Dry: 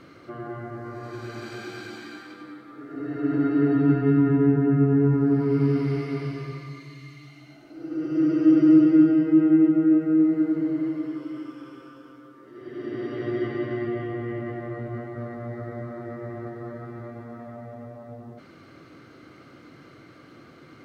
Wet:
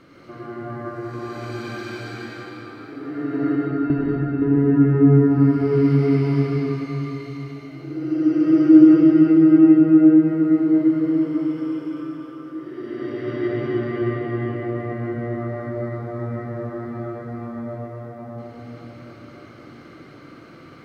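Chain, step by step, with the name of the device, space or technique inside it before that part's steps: 3.55–4.42 gate with hold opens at -10 dBFS; cathedral (reverb RT60 4.2 s, pre-delay 79 ms, DRR -6 dB); gain -2 dB

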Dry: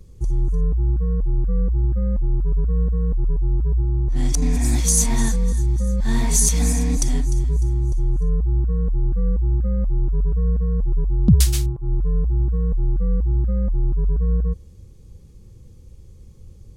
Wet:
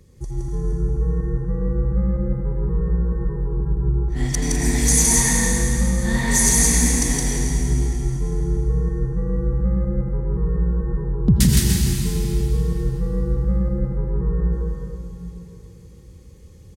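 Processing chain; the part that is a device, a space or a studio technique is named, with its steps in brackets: stadium PA (HPF 120 Hz 6 dB/oct; bell 1900 Hz +8 dB 0.29 oct; loudspeakers at several distances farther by 57 m -2 dB, 70 m -12 dB; reverb RT60 3.3 s, pre-delay 76 ms, DRR 0.5 dB)

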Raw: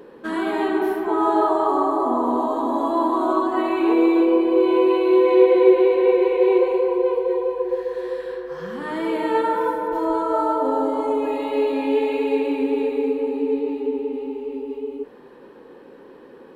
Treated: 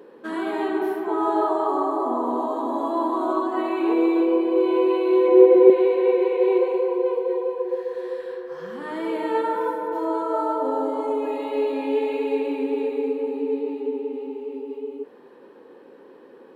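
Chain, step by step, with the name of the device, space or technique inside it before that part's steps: 5.28–5.7 tilt -3.5 dB/oct; filter by subtraction (in parallel: LPF 370 Hz 12 dB/oct + phase invert); on the sum: gain -4.5 dB

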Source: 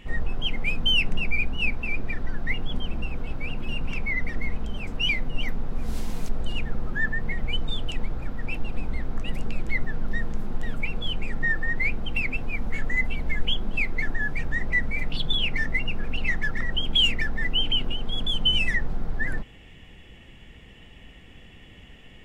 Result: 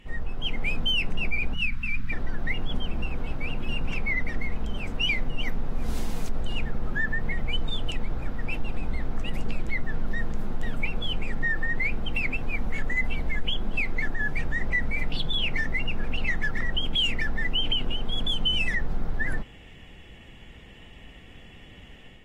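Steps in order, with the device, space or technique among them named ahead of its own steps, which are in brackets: 1.54–2.12 Chebyshev band-stop 200–1500 Hz, order 2; low-bitrate web radio (AGC gain up to 5.5 dB; limiter -11 dBFS, peak gain reduction 5.5 dB; gain -5 dB; AAC 48 kbps 48000 Hz)

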